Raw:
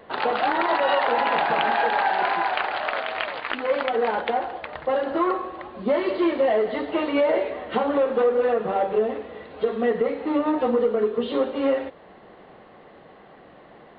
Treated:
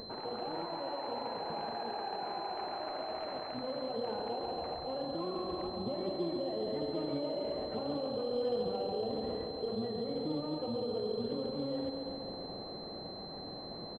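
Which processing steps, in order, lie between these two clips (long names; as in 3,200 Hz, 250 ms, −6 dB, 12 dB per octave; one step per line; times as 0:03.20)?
parametric band 1,600 Hz −3.5 dB 1.2 octaves
pitch-shifted copies added −12 semitones −12 dB
reversed playback
downward compressor, threshold −31 dBFS, peak gain reduction 14 dB
reversed playback
brickwall limiter −32.5 dBFS, peak gain reduction 12 dB
upward compression, threshold −47 dBFS
low-shelf EQ 460 Hz +11 dB
feedback echo with a band-pass in the loop 138 ms, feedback 80%, band-pass 700 Hz, level −4 dB
on a send at −11.5 dB: convolution reverb RT60 2.4 s, pre-delay 55 ms
on the sum: switching amplifier with a slow clock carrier 4,100 Hz
level −4.5 dB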